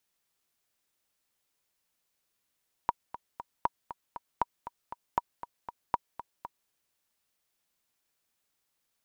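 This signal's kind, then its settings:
click track 236 BPM, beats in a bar 3, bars 5, 954 Hz, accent 13.5 dB −12 dBFS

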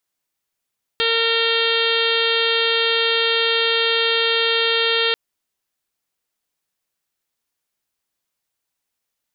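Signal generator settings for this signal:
steady harmonic partials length 4.14 s, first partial 458 Hz, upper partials −11/−4.5/−3.5/−8/−2.5/0.5/−2/−7/−11 dB, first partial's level −22 dB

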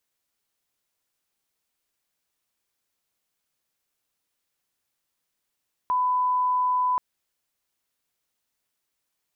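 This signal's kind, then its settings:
line-up tone −20 dBFS 1.08 s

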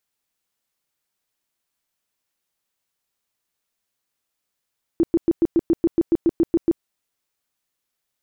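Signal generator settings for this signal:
tone bursts 334 Hz, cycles 11, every 0.14 s, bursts 13, −12.5 dBFS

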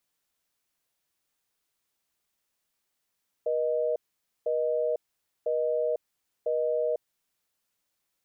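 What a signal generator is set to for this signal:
call progress tone busy tone, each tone −27 dBFS 3.56 s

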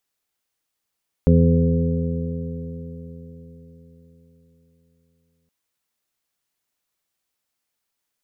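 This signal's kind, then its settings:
stiff-string partials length 4.22 s, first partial 82.3 Hz, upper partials 2/−3/−19.5/−7/−7 dB, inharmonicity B 0.0022, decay 4.41 s, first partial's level −15 dB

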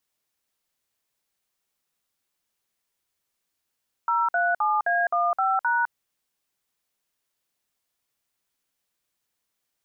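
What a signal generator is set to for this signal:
touch tones "037A15#", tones 207 ms, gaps 54 ms, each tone −22.5 dBFS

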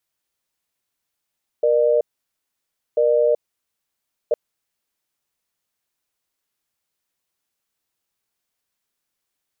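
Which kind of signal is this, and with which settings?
tone pair in a cadence 473 Hz, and 602 Hz, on 0.38 s, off 0.96 s, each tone −16.5 dBFS 2.71 s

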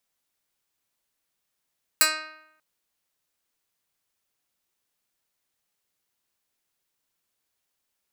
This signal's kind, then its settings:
Karplus-Strong string D#4, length 0.59 s, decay 0.82 s, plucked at 0.1, medium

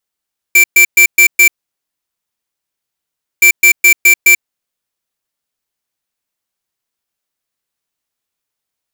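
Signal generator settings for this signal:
beeps in groups square 2,340 Hz, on 0.09 s, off 0.12 s, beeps 5, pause 1.94 s, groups 2, −5.5 dBFS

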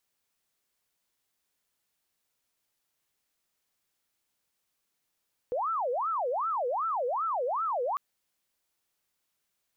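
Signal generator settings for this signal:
siren wail 480–1,340 Hz 2.6 per second sine −27 dBFS 2.45 s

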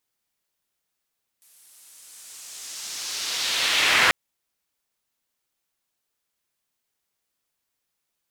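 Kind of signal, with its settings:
filter sweep on noise pink, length 2.69 s bandpass, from 11,000 Hz, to 1,800 Hz, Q 1.4, linear, gain ramp +39 dB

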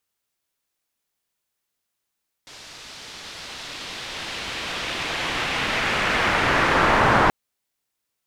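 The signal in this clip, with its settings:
filter sweep on noise white, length 4.83 s lowpass, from 5,000 Hz, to 1,100 Hz, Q 1.2, linear, gain ramp +33.5 dB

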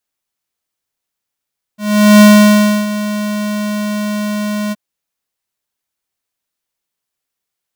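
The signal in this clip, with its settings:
note with an ADSR envelope square 209 Hz, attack 425 ms, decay 655 ms, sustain −14.5 dB, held 2.94 s, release 31 ms −3.5 dBFS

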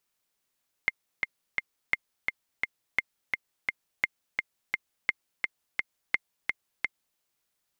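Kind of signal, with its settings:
click track 171 BPM, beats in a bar 3, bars 6, 2,110 Hz, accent 3.5 dB −10 dBFS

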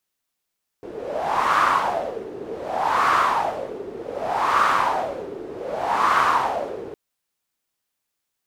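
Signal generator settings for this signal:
wind from filtered noise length 6.11 s, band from 390 Hz, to 1,200 Hz, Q 5.2, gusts 4, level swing 16 dB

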